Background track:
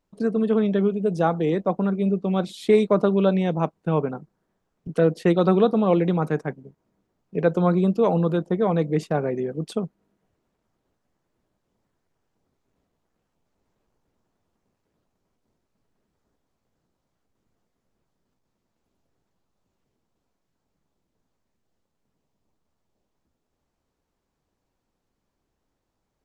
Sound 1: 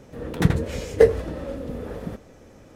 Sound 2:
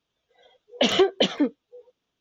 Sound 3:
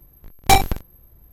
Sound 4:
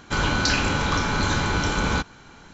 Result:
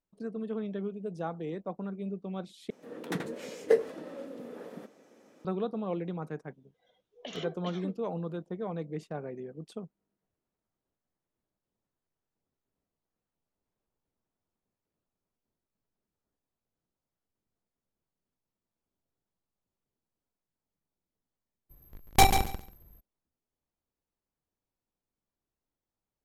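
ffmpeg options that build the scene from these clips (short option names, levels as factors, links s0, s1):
-filter_complex "[0:a]volume=0.188[s0];[1:a]highpass=f=210:w=0.5412,highpass=f=210:w=1.3066[s1];[2:a]acompressor=threshold=0.0631:ratio=6:attack=3.2:release=140:knee=1:detection=peak[s2];[3:a]aecho=1:1:139|278|417:0.398|0.0637|0.0102[s3];[s0]asplit=2[s4][s5];[s4]atrim=end=2.704[s6];[s1]atrim=end=2.75,asetpts=PTS-STARTPTS,volume=0.355[s7];[s5]atrim=start=5.446[s8];[s2]atrim=end=2.2,asetpts=PTS-STARTPTS,volume=0.211,afade=t=in:d=0.004:c=hsin,afade=t=out:st=2.196:d=0.004:c=hsin,adelay=6440[s9];[s3]atrim=end=1.32,asetpts=PTS-STARTPTS,volume=0.473,afade=t=in:d=0.02,afade=t=out:st=1.3:d=0.02,adelay=21690[s10];[s6][s7]acrossfade=d=0.004:c1=hsin:c2=hsin[s11];[s11][s8]acrossfade=d=0.004:c1=hsin:c2=hsin[s12];[s12][s9][s10]amix=inputs=3:normalize=0"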